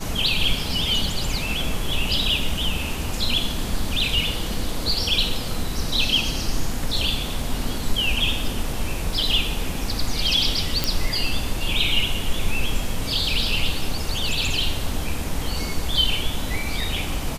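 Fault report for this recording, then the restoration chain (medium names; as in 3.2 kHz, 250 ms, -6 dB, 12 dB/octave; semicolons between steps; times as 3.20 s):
10.84 s: pop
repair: de-click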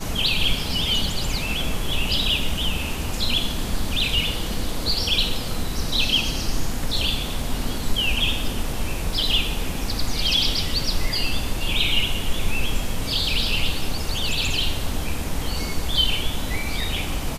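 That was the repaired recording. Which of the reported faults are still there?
nothing left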